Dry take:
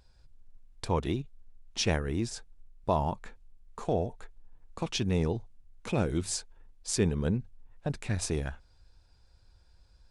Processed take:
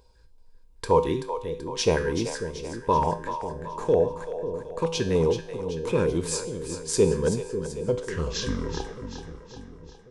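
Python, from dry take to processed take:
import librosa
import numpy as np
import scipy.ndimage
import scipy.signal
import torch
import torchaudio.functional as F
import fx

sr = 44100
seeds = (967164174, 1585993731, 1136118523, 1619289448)

p1 = fx.tape_stop_end(x, sr, length_s=2.58)
p2 = fx.high_shelf(p1, sr, hz=6500.0, db=5.5)
p3 = fx.comb_fb(p2, sr, f0_hz=55.0, decay_s=0.62, harmonics='odd', damping=0.0, mix_pct=70)
p4 = fx.small_body(p3, sr, hz=(470.0, 970.0, 1600.0), ring_ms=25, db=14)
p5 = fx.filter_lfo_notch(p4, sr, shape='square', hz=3.3, low_hz=700.0, high_hz=1700.0, q=1.8)
p6 = p5 + fx.echo_split(p5, sr, split_hz=480.0, low_ms=544, high_ms=382, feedback_pct=52, wet_db=-9, dry=0)
y = F.gain(torch.from_numpy(p6), 8.5).numpy()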